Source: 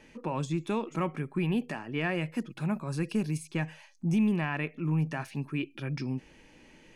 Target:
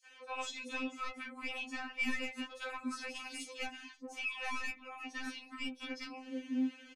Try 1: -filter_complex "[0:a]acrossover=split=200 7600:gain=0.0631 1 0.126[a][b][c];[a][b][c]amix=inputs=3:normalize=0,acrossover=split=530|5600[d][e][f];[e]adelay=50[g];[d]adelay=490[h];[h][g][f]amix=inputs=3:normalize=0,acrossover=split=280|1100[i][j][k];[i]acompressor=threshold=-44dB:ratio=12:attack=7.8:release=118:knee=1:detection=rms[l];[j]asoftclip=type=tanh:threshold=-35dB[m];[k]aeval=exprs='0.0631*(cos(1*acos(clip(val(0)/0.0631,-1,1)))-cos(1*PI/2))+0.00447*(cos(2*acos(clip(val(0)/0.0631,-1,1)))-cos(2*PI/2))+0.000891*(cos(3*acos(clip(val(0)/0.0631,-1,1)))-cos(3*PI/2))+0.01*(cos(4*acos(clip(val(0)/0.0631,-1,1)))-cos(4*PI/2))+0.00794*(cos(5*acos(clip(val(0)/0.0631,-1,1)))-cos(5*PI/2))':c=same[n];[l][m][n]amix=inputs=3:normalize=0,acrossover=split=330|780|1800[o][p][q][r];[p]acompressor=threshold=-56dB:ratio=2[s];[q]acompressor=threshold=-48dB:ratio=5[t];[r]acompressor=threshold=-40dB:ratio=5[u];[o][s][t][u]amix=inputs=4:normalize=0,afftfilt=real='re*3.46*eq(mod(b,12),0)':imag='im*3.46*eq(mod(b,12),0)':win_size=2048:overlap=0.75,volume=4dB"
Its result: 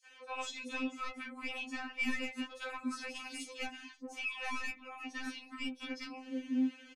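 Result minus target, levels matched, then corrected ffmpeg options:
compressor: peak gain reduction -6 dB
-filter_complex "[0:a]acrossover=split=200 7600:gain=0.0631 1 0.126[a][b][c];[a][b][c]amix=inputs=3:normalize=0,acrossover=split=530|5600[d][e][f];[e]adelay=50[g];[d]adelay=490[h];[h][g][f]amix=inputs=3:normalize=0,acrossover=split=280|1100[i][j][k];[i]acompressor=threshold=-50.5dB:ratio=12:attack=7.8:release=118:knee=1:detection=rms[l];[j]asoftclip=type=tanh:threshold=-35dB[m];[k]aeval=exprs='0.0631*(cos(1*acos(clip(val(0)/0.0631,-1,1)))-cos(1*PI/2))+0.00447*(cos(2*acos(clip(val(0)/0.0631,-1,1)))-cos(2*PI/2))+0.000891*(cos(3*acos(clip(val(0)/0.0631,-1,1)))-cos(3*PI/2))+0.01*(cos(4*acos(clip(val(0)/0.0631,-1,1)))-cos(4*PI/2))+0.00794*(cos(5*acos(clip(val(0)/0.0631,-1,1)))-cos(5*PI/2))':c=same[n];[l][m][n]amix=inputs=3:normalize=0,acrossover=split=330|780|1800[o][p][q][r];[p]acompressor=threshold=-56dB:ratio=2[s];[q]acompressor=threshold=-48dB:ratio=5[t];[r]acompressor=threshold=-40dB:ratio=5[u];[o][s][t][u]amix=inputs=4:normalize=0,afftfilt=real='re*3.46*eq(mod(b,12),0)':imag='im*3.46*eq(mod(b,12),0)':win_size=2048:overlap=0.75,volume=4dB"

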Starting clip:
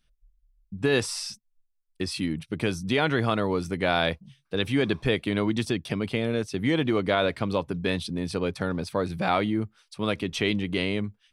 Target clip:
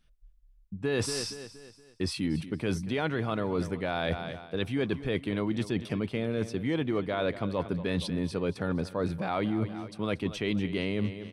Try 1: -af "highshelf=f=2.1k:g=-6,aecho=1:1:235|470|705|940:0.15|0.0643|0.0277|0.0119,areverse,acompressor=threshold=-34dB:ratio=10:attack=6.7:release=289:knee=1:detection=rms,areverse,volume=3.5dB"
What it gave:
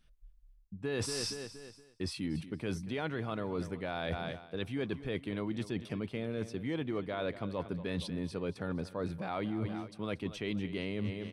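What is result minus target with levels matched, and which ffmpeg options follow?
compressor: peak gain reduction +6.5 dB
-af "highshelf=f=2.1k:g=-6,aecho=1:1:235|470|705|940:0.15|0.0643|0.0277|0.0119,areverse,acompressor=threshold=-27dB:ratio=10:attack=6.7:release=289:knee=1:detection=rms,areverse,volume=3.5dB"

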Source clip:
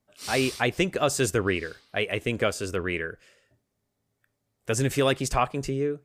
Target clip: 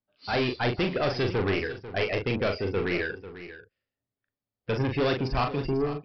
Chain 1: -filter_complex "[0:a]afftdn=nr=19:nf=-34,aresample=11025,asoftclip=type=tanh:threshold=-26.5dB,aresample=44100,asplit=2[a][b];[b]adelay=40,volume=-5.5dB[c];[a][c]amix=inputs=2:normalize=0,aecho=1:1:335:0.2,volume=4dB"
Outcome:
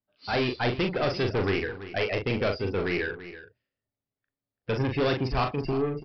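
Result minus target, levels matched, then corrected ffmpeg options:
echo 0.159 s early
-filter_complex "[0:a]afftdn=nr=19:nf=-34,aresample=11025,asoftclip=type=tanh:threshold=-26.5dB,aresample=44100,asplit=2[a][b];[b]adelay=40,volume=-5.5dB[c];[a][c]amix=inputs=2:normalize=0,aecho=1:1:494:0.2,volume=4dB"

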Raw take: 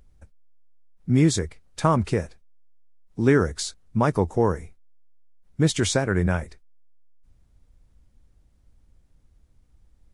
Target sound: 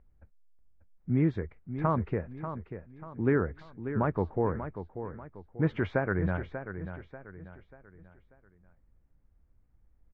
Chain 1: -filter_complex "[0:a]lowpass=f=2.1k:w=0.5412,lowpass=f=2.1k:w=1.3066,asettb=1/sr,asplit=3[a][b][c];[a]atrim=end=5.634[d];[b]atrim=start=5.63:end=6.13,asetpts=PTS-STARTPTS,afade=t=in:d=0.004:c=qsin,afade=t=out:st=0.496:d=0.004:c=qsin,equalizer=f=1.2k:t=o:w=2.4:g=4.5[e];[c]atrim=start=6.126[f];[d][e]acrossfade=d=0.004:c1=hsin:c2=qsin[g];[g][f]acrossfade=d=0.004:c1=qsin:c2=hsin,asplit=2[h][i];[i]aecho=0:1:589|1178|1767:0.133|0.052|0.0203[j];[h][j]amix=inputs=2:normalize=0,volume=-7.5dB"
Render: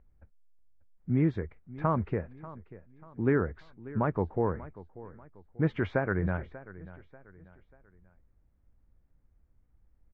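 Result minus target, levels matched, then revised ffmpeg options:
echo-to-direct -7.5 dB
-filter_complex "[0:a]lowpass=f=2.1k:w=0.5412,lowpass=f=2.1k:w=1.3066,asettb=1/sr,asplit=3[a][b][c];[a]atrim=end=5.634[d];[b]atrim=start=5.63:end=6.13,asetpts=PTS-STARTPTS,afade=t=in:d=0.004:c=qsin,afade=t=out:st=0.496:d=0.004:c=qsin,equalizer=f=1.2k:t=o:w=2.4:g=4.5[e];[c]atrim=start=6.126[f];[d][e]acrossfade=d=0.004:c1=hsin:c2=qsin[g];[g][f]acrossfade=d=0.004:c1=qsin:c2=hsin,asplit=2[h][i];[i]aecho=0:1:589|1178|1767|2356:0.316|0.123|0.0481|0.0188[j];[h][j]amix=inputs=2:normalize=0,volume=-7.5dB"

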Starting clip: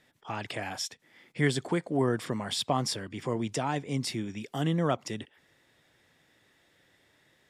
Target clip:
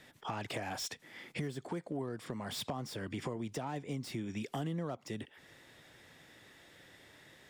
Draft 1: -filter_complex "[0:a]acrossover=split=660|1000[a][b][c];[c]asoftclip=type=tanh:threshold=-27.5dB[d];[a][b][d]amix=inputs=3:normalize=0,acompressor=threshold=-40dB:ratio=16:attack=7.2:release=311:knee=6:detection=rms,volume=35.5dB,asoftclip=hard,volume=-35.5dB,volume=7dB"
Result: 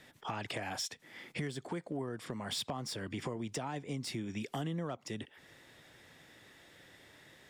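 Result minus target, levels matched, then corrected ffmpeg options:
soft clip: distortion -9 dB
-filter_complex "[0:a]acrossover=split=660|1000[a][b][c];[c]asoftclip=type=tanh:threshold=-39dB[d];[a][b][d]amix=inputs=3:normalize=0,acompressor=threshold=-40dB:ratio=16:attack=7.2:release=311:knee=6:detection=rms,volume=35.5dB,asoftclip=hard,volume=-35.5dB,volume=7dB"

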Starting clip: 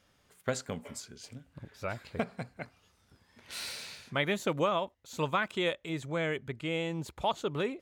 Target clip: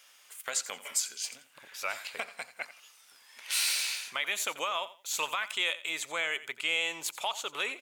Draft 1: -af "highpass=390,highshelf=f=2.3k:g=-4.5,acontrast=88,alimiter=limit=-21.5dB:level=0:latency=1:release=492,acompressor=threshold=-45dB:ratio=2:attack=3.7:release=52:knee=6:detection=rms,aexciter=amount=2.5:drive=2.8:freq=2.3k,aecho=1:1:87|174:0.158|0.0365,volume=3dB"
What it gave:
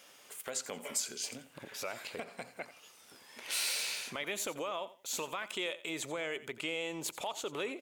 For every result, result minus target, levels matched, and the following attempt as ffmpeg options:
500 Hz band +7.5 dB; compressor: peak gain reduction +6 dB
-af "highpass=1.1k,highshelf=f=2.3k:g=-4.5,acontrast=88,alimiter=limit=-21.5dB:level=0:latency=1:release=492,acompressor=threshold=-45dB:ratio=2:attack=3.7:release=52:knee=6:detection=rms,aexciter=amount=2.5:drive=2.8:freq=2.3k,aecho=1:1:87|174:0.158|0.0365,volume=3dB"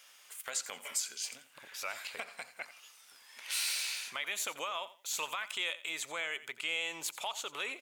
compressor: peak gain reduction +5.5 dB
-af "highpass=1.1k,highshelf=f=2.3k:g=-4.5,acontrast=88,alimiter=limit=-21.5dB:level=0:latency=1:release=492,acompressor=threshold=-34dB:ratio=2:attack=3.7:release=52:knee=6:detection=rms,aexciter=amount=2.5:drive=2.8:freq=2.3k,aecho=1:1:87|174:0.158|0.0365,volume=3dB"

